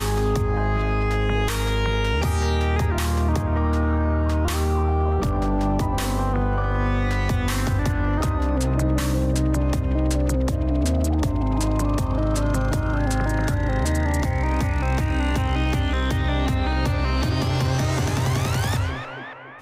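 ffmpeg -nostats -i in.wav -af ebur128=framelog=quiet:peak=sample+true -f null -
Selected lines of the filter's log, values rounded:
Integrated loudness:
  I:         -22.7 LUFS
  Threshold: -32.8 LUFS
Loudness range:
  LRA:         0.6 LU
  Threshold: -42.7 LUFS
  LRA low:   -22.9 LUFS
  LRA high:  -22.3 LUFS
Sample peak:
  Peak:      -13.9 dBFS
True peak:
  Peak:      -13.8 dBFS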